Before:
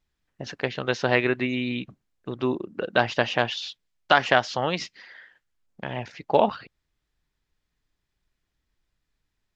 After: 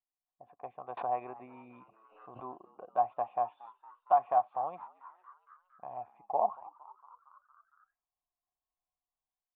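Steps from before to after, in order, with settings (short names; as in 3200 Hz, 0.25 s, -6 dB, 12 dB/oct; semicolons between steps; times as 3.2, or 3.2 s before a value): vocal tract filter a; AGC gain up to 8.5 dB; frequency-shifting echo 0.23 s, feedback 65%, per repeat +93 Hz, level -21 dB; 0.97–2.46 backwards sustainer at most 82 dB/s; gain -8 dB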